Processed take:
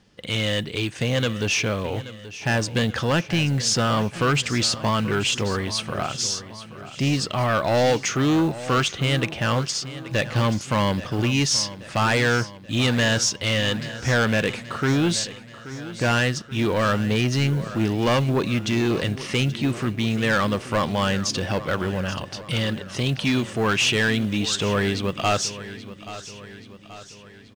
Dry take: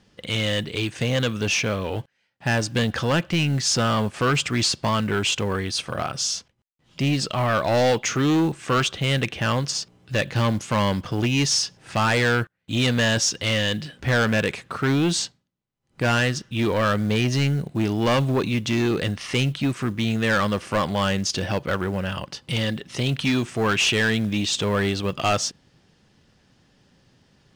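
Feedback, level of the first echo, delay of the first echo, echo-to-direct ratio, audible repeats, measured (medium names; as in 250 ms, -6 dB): 54%, -15.0 dB, 830 ms, -13.5 dB, 4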